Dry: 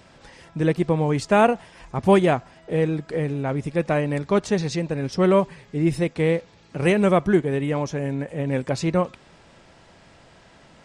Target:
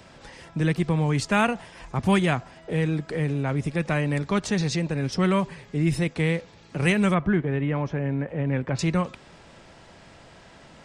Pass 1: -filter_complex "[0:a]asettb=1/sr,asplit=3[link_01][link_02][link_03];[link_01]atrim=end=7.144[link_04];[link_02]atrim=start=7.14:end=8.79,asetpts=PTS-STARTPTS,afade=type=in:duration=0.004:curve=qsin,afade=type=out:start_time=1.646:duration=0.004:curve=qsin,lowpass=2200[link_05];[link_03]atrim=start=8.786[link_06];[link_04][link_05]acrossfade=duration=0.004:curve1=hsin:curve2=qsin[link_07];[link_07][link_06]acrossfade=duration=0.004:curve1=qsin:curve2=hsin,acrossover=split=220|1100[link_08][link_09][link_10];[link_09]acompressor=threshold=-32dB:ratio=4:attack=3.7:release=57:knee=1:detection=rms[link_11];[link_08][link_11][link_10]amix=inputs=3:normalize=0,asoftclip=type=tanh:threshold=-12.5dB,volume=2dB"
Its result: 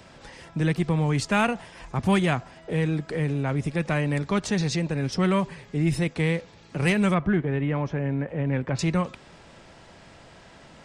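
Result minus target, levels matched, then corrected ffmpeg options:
soft clipping: distortion +18 dB
-filter_complex "[0:a]asettb=1/sr,asplit=3[link_01][link_02][link_03];[link_01]atrim=end=7.144[link_04];[link_02]atrim=start=7.14:end=8.79,asetpts=PTS-STARTPTS,afade=type=in:duration=0.004:curve=qsin,afade=type=out:start_time=1.646:duration=0.004:curve=qsin,lowpass=2200[link_05];[link_03]atrim=start=8.786[link_06];[link_04][link_05]acrossfade=duration=0.004:curve1=hsin:curve2=qsin[link_07];[link_07][link_06]acrossfade=duration=0.004:curve1=qsin:curve2=hsin,acrossover=split=220|1100[link_08][link_09][link_10];[link_09]acompressor=threshold=-32dB:ratio=4:attack=3.7:release=57:knee=1:detection=rms[link_11];[link_08][link_11][link_10]amix=inputs=3:normalize=0,asoftclip=type=tanh:threshold=-2.5dB,volume=2dB"

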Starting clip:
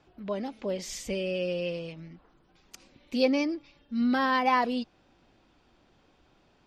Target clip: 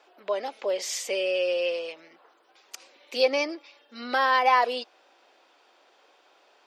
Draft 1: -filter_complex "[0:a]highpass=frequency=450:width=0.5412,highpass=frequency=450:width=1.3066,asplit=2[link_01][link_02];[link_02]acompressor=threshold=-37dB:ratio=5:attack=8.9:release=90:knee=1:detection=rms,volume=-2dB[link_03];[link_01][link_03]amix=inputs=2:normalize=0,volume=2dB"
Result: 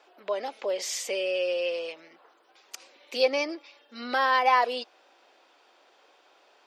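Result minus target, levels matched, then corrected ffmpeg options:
downward compressor: peak gain reduction +5.5 dB
-filter_complex "[0:a]highpass=frequency=450:width=0.5412,highpass=frequency=450:width=1.3066,asplit=2[link_01][link_02];[link_02]acompressor=threshold=-30dB:ratio=5:attack=8.9:release=90:knee=1:detection=rms,volume=-2dB[link_03];[link_01][link_03]amix=inputs=2:normalize=0,volume=2dB"

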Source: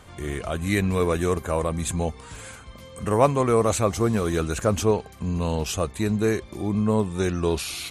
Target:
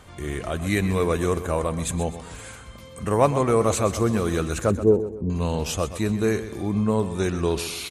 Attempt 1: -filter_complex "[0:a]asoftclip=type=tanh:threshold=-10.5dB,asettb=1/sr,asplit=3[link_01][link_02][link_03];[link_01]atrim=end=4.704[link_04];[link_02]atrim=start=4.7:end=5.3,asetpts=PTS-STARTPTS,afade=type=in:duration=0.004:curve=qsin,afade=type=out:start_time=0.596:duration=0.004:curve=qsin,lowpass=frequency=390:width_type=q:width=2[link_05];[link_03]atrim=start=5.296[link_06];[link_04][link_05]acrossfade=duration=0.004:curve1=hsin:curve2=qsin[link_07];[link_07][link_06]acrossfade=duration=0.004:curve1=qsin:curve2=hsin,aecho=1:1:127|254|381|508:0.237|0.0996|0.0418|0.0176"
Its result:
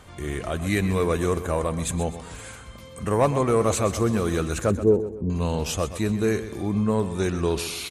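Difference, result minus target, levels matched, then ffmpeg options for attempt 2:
soft clipping: distortion +17 dB
-filter_complex "[0:a]asoftclip=type=tanh:threshold=0dB,asettb=1/sr,asplit=3[link_01][link_02][link_03];[link_01]atrim=end=4.704[link_04];[link_02]atrim=start=4.7:end=5.3,asetpts=PTS-STARTPTS,afade=type=in:duration=0.004:curve=qsin,afade=type=out:start_time=0.596:duration=0.004:curve=qsin,lowpass=frequency=390:width_type=q:width=2[link_05];[link_03]atrim=start=5.296[link_06];[link_04][link_05]acrossfade=duration=0.004:curve1=hsin:curve2=qsin[link_07];[link_07][link_06]acrossfade=duration=0.004:curve1=qsin:curve2=hsin,aecho=1:1:127|254|381|508:0.237|0.0996|0.0418|0.0176"

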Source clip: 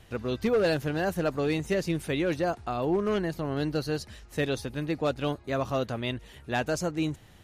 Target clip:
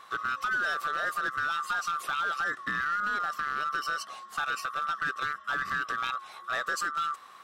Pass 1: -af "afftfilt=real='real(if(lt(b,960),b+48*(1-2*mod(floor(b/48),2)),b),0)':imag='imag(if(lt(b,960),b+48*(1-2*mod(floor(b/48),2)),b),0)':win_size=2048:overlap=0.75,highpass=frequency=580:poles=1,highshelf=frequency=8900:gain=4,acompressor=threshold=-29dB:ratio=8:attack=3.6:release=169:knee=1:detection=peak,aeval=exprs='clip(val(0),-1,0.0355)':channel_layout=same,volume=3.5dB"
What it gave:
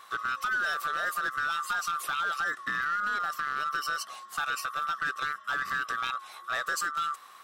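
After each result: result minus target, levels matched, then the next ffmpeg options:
8,000 Hz band +3.5 dB; 250 Hz band −3.0 dB
-af "afftfilt=real='real(if(lt(b,960),b+48*(1-2*mod(floor(b/48),2)),b),0)':imag='imag(if(lt(b,960),b+48*(1-2*mod(floor(b/48),2)),b),0)':win_size=2048:overlap=0.75,highpass=frequency=580:poles=1,highshelf=frequency=8900:gain=-6.5,acompressor=threshold=-29dB:ratio=8:attack=3.6:release=169:knee=1:detection=peak,aeval=exprs='clip(val(0),-1,0.0355)':channel_layout=same,volume=3.5dB"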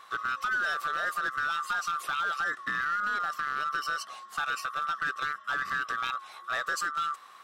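250 Hz band −3.0 dB
-af "afftfilt=real='real(if(lt(b,960),b+48*(1-2*mod(floor(b/48),2)),b),0)':imag='imag(if(lt(b,960),b+48*(1-2*mod(floor(b/48),2)),b),0)':win_size=2048:overlap=0.75,highpass=frequency=280:poles=1,highshelf=frequency=8900:gain=-6.5,acompressor=threshold=-29dB:ratio=8:attack=3.6:release=169:knee=1:detection=peak,aeval=exprs='clip(val(0),-1,0.0355)':channel_layout=same,volume=3.5dB"

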